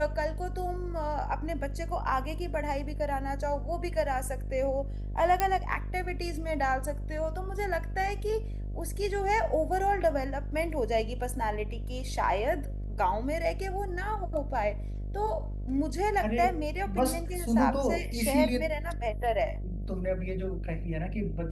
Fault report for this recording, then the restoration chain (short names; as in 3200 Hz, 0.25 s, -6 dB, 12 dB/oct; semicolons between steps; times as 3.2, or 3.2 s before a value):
buzz 50 Hz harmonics 14 -35 dBFS
5.4 pop -11 dBFS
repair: de-click; de-hum 50 Hz, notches 14